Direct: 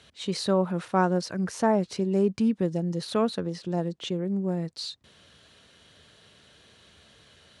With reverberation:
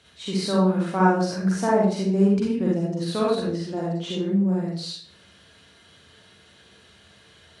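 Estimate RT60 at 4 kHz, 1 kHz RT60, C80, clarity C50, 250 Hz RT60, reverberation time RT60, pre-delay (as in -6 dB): 0.40 s, 0.50 s, 5.0 dB, -1.0 dB, 0.60 s, 0.50 s, 39 ms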